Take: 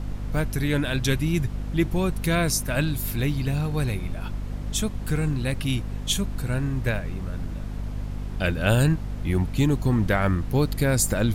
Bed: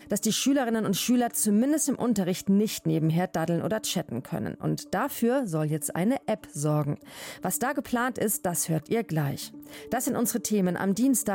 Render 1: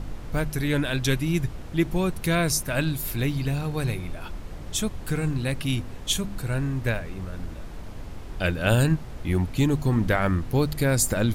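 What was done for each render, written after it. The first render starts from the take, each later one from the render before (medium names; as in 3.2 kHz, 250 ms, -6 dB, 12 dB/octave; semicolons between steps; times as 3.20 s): de-hum 50 Hz, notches 5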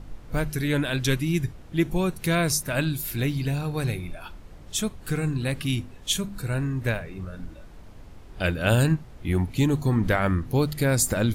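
noise print and reduce 8 dB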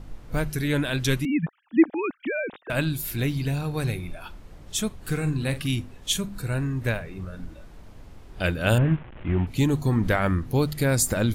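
1.25–2.70 s: formants replaced by sine waves; 4.98–5.68 s: doubling 46 ms -12 dB; 8.78–9.47 s: one-bit delta coder 16 kbps, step -37.5 dBFS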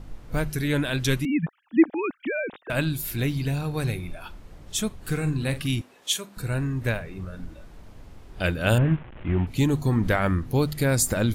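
5.81–6.37 s: high-pass 420 Hz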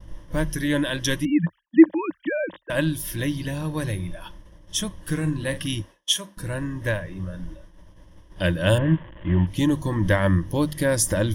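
expander -37 dBFS; rippled EQ curve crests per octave 1.2, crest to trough 12 dB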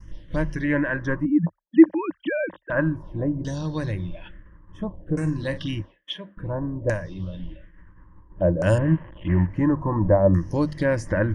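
LFO low-pass saw down 0.58 Hz 540–6700 Hz; touch-sensitive phaser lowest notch 560 Hz, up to 3.5 kHz, full sweep at -22 dBFS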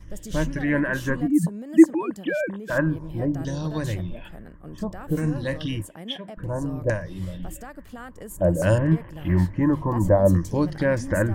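add bed -13 dB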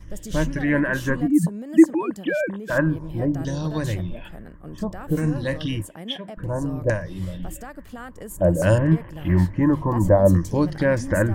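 trim +2 dB; peak limiter -3 dBFS, peak gain reduction 2.5 dB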